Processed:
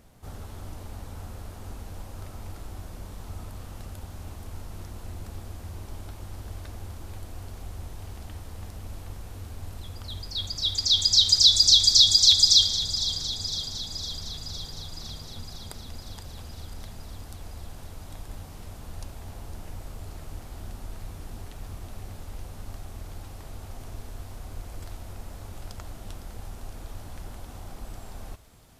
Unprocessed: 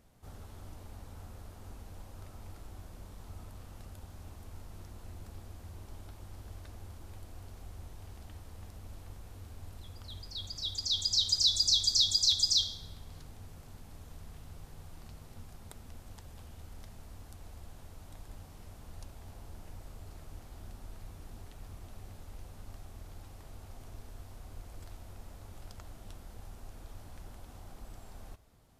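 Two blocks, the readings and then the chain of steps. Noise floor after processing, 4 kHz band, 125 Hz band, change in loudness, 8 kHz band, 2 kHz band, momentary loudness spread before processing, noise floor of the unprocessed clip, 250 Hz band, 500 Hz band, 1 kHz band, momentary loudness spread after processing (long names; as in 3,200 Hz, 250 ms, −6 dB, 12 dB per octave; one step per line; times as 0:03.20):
−43 dBFS, +10.0 dB, +8.5 dB, +8.0 dB, +9.5 dB, can't be measured, 18 LU, −52 dBFS, +8.5 dB, +8.5 dB, +8.5 dB, 22 LU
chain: dynamic equaliser 2,200 Hz, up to +5 dB, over −47 dBFS, Q 1.3
on a send: delay with a high-pass on its return 508 ms, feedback 65%, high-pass 1,900 Hz, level −12 dB
on the sum: level +8.5 dB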